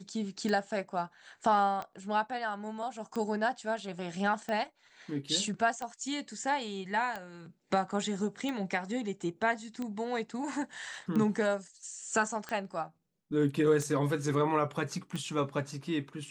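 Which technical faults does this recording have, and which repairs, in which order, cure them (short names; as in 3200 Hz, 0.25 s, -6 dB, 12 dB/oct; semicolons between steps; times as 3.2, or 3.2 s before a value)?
tick 45 rpm -23 dBFS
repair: de-click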